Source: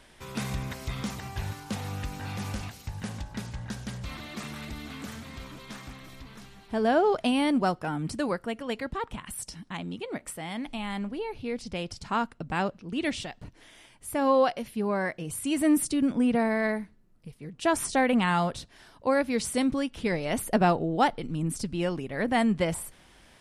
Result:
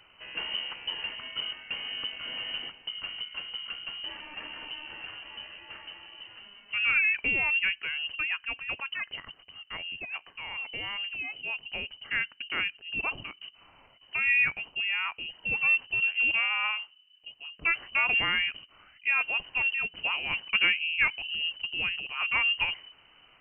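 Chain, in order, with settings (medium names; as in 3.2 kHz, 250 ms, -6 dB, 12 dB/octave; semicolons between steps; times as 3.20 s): frequency inversion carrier 3 kHz; trim -2.5 dB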